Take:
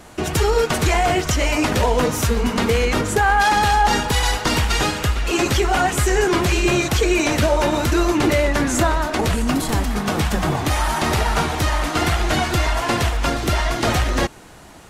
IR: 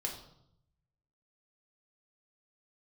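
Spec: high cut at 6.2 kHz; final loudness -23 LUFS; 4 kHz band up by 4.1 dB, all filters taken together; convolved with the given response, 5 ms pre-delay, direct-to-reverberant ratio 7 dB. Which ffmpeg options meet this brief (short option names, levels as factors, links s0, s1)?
-filter_complex "[0:a]lowpass=6200,equalizer=f=4000:t=o:g=6,asplit=2[s0][s1];[1:a]atrim=start_sample=2205,adelay=5[s2];[s1][s2]afir=irnorm=-1:irlink=0,volume=0.376[s3];[s0][s3]amix=inputs=2:normalize=0,volume=0.531"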